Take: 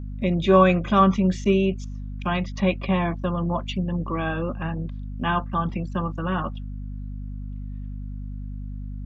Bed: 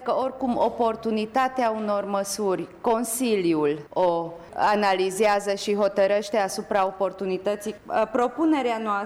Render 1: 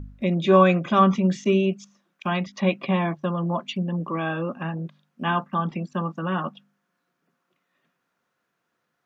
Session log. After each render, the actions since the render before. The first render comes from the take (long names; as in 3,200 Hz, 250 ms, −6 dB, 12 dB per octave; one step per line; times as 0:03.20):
hum removal 50 Hz, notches 5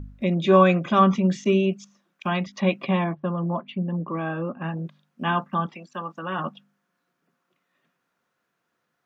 0:03.04–0:04.64: high-frequency loss of the air 450 metres
0:05.65–0:06.38: high-pass filter 1,300 Hz → 380 Hz 6 dB per octave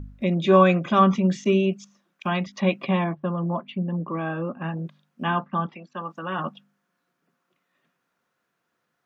0:05.27–0:06.05: high-frequency loss of the air 150 metres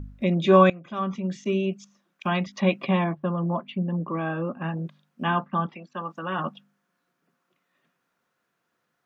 0:00.70–0:02.30: fade in, from −21 dB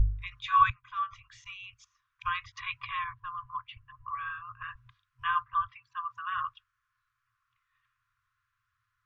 brick-wall band-stop 120–1,000 Hz
spectral tilt −3.5 dB per octave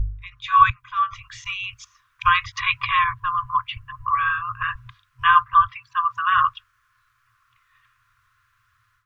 automatic gain control gain up to 15.5 dB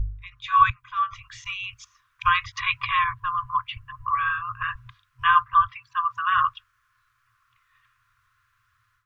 level −3 dB